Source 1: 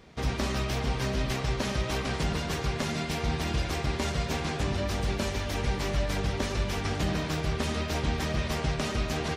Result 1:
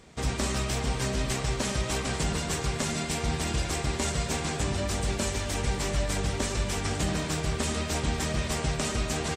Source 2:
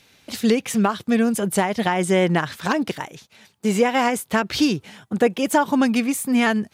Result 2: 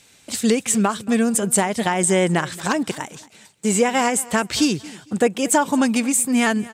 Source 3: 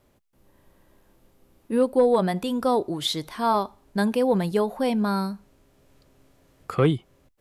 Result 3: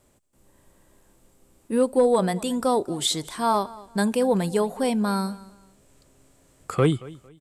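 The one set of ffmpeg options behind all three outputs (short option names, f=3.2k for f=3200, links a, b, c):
-af "equalizer=f=8k:t=o:w=0.55:g=14,aecho=1:1:227|454:0.0944|0.0264"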